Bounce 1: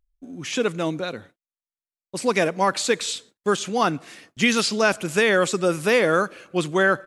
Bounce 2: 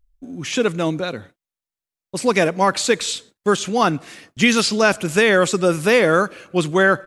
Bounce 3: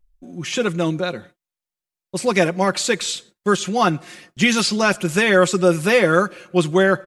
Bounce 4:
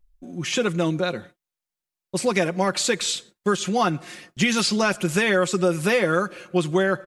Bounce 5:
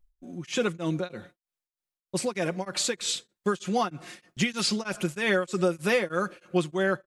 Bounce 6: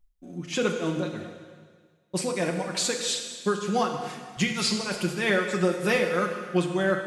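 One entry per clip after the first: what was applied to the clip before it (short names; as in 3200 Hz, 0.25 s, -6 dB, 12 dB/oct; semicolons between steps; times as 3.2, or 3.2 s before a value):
low shelf 100 Hz +8 dB; gain +3.5 dB
comb 5.6 ms, depth 53%; gain -1.5 dB
compressor 3:1, threshold -18 dBFS, peak gain reduction 7 dB
beating tremolo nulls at 3.2 Hz; gain -3 dB
plate-style reverb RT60 1.7 s, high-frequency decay 1×, DRR 3.5 dB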